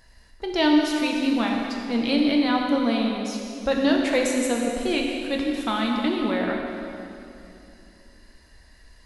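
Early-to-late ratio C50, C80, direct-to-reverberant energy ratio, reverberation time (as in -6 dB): 1.5 dB, 2.5 dB, 0.0 dB, 2.8 s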